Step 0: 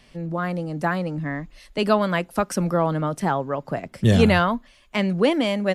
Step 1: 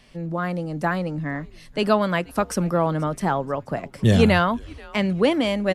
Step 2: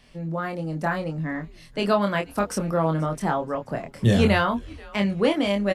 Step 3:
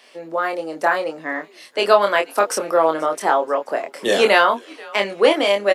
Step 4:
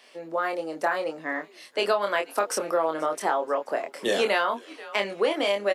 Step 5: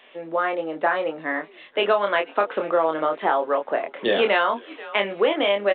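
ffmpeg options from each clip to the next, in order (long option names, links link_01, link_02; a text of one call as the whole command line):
ffmpeg -i in.wav -filter_complex "[0:a]asplit=4[link_01][link_02][link_03][link_04];[link_02]adelay=482,afreqshift=-140,volume=-23dB[link_05];[link_03]adelay=964,afreqshift=-280,volume=-29.4dB[link_06];[link_04]adelay=1446,afreqshift=-420,volume=-35.8dB[link_07];[link_01][link_05][link_06][link_07]amix=inputs=4:normalize=0" out.wav
ffmpeg -i in.wav -filter_complex "[0:a]asplit=2[link_01][link_02];[link_02]adelay=25,volume=-4.5dB[link_03];[link_01][link_03]amix=inputs=2:normalize=0,volume=-3dB" out.wav
ffmpeg -i in.wav -af "highpass=frequency=370:width=0.5412,highpass=frequency=370:width=1.3066,volume=8.5dB" out.wav
ffmpeg -i in.wav -af "acompressor=threshold=-16dB:ratio=4,volume=-4.5dB" out.wav
ffmpeg -i in.wav -af "volume=4dB" -ar 8000 -c:a pcm_mulaw out.wav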